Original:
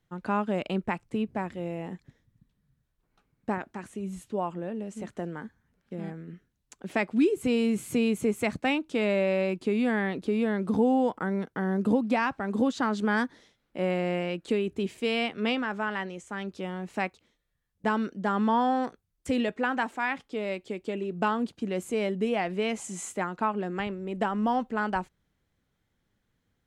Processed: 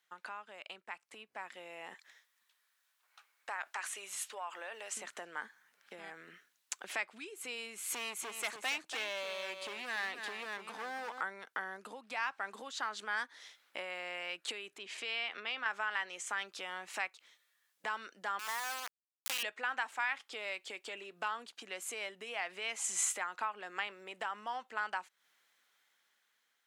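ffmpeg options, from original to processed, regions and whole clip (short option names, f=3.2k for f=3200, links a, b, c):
-filter_complex "[0:a]asettb=1/sr,asplit=3[a][b][c];[a]atrim=end=1.944[d];[b]atrim=start=1.94:end=4.97,asetpts=PTS-STARTPTS,afade=t=in:d=0.004:c=qsin,afade=t=out:st=3.026:d=0.004:c=qsin,highpass=630,acompressor=threshold=-40dB:ratio=4:attack=3.2:release=140:knee=1:detection=peak[e];[c]atrim=start=4.966[f];[d][e]acrossfade=d=0.004:c1=hsin:c2=qsin[g];[g][f]acrossfade=d=0.004:c1=qsin:c2=hsin,asettb=1/sr,asplit=3[h][i][j];[h]atrim=end=7.904[k];[i]atrim=start=7.9:end=11.21,asetpts=PTS-STARTPTS,afade=t=in:d=0.004:c=qsin,afade=t=out:st=3.306:d=0.004:c=qsin,asoftclip=type=hard:threshold=-24.5dB,aecho=1:1:286:0.335,atrim=end_sample=145971[l];[j]atrim=start=11.206[m];[k][l]acrossfade=d=0.004:c1=hsin:c2=qsin[n];[n][m]acrossfade=d=0.004:c1=qsin:c2=hsin,asettb=1/sr,asplit=3[o][p][q];[o]atrim=end=14.784[r];[p]atrim=start=14.78:end=15.66,asetpts=PTS-STARTPTS,afade=t=in:d=0.004:c=qsin,afade=t=out:st=0.876:d=0.004:c=qsin,acompressor=threshold=-37dB:ratio=2.5:attack=3.2:release=140:knee=1:detection=peak,highpass=100,lowpass=5.5k[s];[q]atrim=start=15.656[t];[r][s]acrossfade=d=0.004:c1=hsin:c2=qsin[u];[u][t]acrossfade=d=0.004:c1=qsin:c2=hsin,asettb=1/sr,asplit=3[v][w][x];[v]atrim=end=18.394[y];[w]atrim=start=18.39:end=19.43,asetpts=PTS-STARTPTS,afade=t=in:d=0.004:c=qsin,afade=t=out:st=1.036:d=0.004:c=qsin,highpass=f=1.1k:p=1,acrusher=bits=3:dc=4:mix=0:aa=0.000001[z];[x]atrim=start=19.426[aa];[y][z]acrossfade=d=0.004:c1=hsin:c2=qsin[ab];[ab][aa]acrossfade=d=0.004:c1=qsin:c2=hsin,acompressor=threshold=-40dB:ratio=6,highpass=1.2k,dynaudnorm=f=430:g=7:m=7.5dB,volume=4dB"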